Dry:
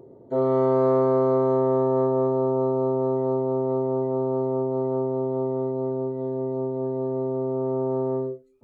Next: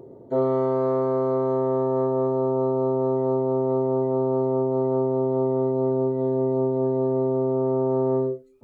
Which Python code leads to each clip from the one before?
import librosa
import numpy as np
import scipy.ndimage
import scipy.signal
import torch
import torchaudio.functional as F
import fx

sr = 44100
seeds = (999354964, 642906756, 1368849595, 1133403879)

y = fx.rider(x, sr, range_db=4, speed_s=0.5)
y = y * librosa.db_to_amplitude(1.0)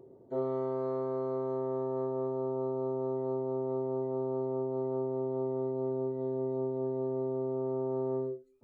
y = fx.comb_fb(x, sr, f0_hz=380.0, decay_s=0.21, harmonics='all', damping=0.0, mix_pct=60)
y = y * librosa.db_to_amplitude(-4.5)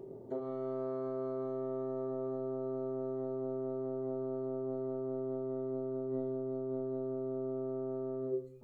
y = fx.over_compress(x, sr, threshold_db=-38.0, ratio=-1.0)
y = fx.room_shoebox(y, sr, seeds[0], volume_m3=560.0, walls='furnished', distance_m=1.3)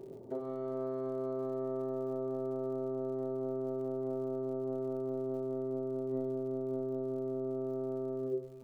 y = x + 10.0 ** (-15.5 / 20.0) * np.pad(x, (int(405 * sr / 1000.0), 0))[:len(x)]
y = fx.dmg_crackle(y, sr, seeds[1], per_s=96.0, level_db=-54.0)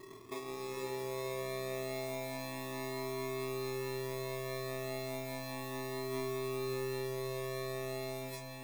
y = fx.sample_hold(x, sr, seeds[2], rate_hz=1500.0, jitter_pct=0)
y = fx.echo_diffused(y, sr, ms=488, feedback_pct=45, wet_db=-4)
y = fx.comb_cascade(y, sr, direction='rising', hz=0.33)